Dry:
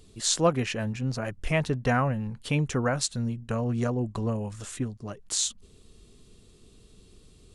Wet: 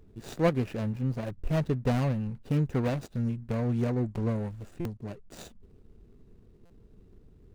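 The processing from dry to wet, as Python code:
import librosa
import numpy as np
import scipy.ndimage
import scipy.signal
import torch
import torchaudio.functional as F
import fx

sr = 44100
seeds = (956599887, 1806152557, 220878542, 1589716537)

y = scipy.ndimage.median_filter(x, 41, mode='constant')
y = fx.buffer_glitch(y, sr, at_s=(4.8, 6.65), block=256, repeats=8)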